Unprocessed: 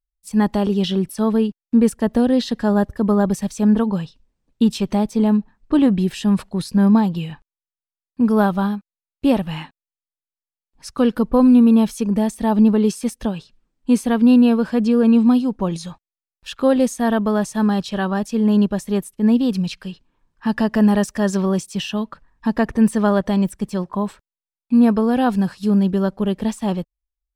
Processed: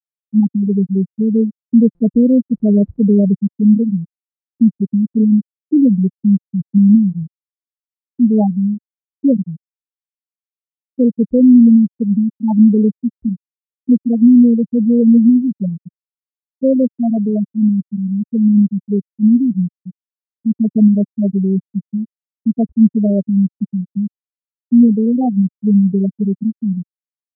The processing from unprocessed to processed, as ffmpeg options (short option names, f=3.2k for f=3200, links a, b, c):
-filter_complex "[0:a]asettb=1/sr,asplit=3[a][b][c];[a]atrim=end=1.954[d];[b]atrim=start=1.95:end=3.47,asetpts=PTS-STARTPTS,afade=t=in:d=0.004:c=qsin,afade=t=out:st=1.516:d=0.004:c=qsin,aeval=exprs='val(0)+0.5*0.075*sgn(val(0))':c=same[e];[c]atrim=start=3.466[f];[d][e]acrossfade=d=0.004:c1=hsin:c2=qsin[g];[g][f]acrossfade=d=0.004:c1=qsin:c2=hsin,asettb=1/sr,asplit=3[h][i][j];[h]atrim=end=13.194[k];[i]atrim=start=13.19:end=13.95,asetpts=PTS-STARTPTS,afade=t=in:d=0.004:c=qsin,afade=t=out:st=0.756:d=0.004:c=qsin,asplit=2[l][m];[m]adelay=31,volume=-11dB[n];[l][n]amix=inputs=2:normalize=0,atrim=end_sample=33516[o];[j]atrim=start=13.946[p];[k][o]acrossfade=d=0.004:c1=hsin:c2=qsin[q];[q][p]acrossfade=d=0.004:c1=qsin:c2=hsin,lowshelf=f=310:g=9.5,afftfilt=real='re*gte(hypot(re,im),1.12)':imag='im*gte(hypot(re,im),1.12)':win_size=1024:overlap=0.75,highpass=130,volume=-1dB"